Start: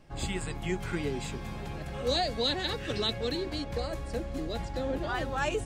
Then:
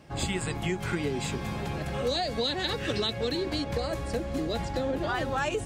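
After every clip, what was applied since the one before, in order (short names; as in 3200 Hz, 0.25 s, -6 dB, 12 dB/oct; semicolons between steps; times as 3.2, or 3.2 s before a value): HPF 67 Hz; compressor, threshold -32 dBFS, peak gain reduction 8 dB; gain +6.5 dB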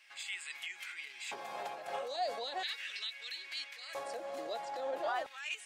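limiter -27 dBFS, peak gain reduction 10.5 dB; LFO high-pass square 0.38 Hz 680–2200 Hz; noise-modulated level, depth 65%; gain -1.5 dB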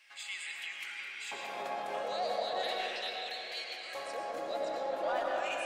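soft clip -28 dBFS, distortion -23 dB; reverb RT60 3.7 s, pre-delay 70 ms, DRR -2.5 dB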